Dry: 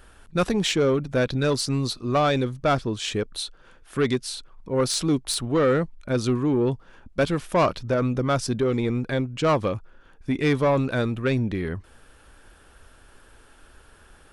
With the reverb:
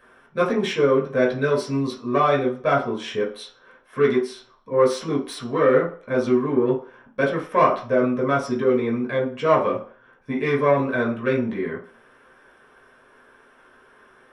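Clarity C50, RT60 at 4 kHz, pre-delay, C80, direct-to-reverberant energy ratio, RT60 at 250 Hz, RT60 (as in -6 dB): 9.0 dB, 0.45 s, 3 ms, 14.0 dB, -4.5 dB, 0.35 s, 0.45 s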